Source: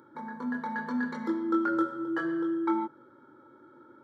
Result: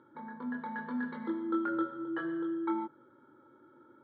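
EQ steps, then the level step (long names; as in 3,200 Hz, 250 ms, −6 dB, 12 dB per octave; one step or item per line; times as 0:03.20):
low-pass with resonance 3,600 Hz, resonance Q 3.1
high-frequency loss of the air 430 metres
−4.0 dB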